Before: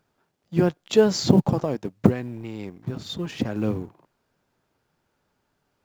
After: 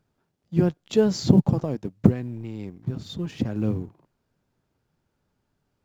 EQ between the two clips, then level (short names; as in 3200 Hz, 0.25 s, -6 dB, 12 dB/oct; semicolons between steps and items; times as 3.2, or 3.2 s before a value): low shelf 320 Hz +11.5 dB; bell 5900 Hz +2.5 dB 2.4 oct; -7.5 dB